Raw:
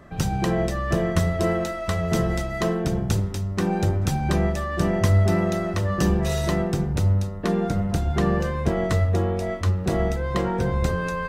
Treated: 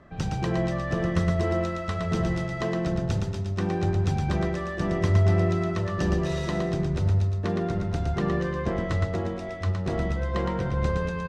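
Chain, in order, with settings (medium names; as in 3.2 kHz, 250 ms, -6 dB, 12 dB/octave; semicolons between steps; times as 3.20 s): low-pass 5.2 kHz 12 dB/octave; on a send: feedback delay 115 ms, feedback 48%, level -4.5 dB; on the sum: trim -5 dB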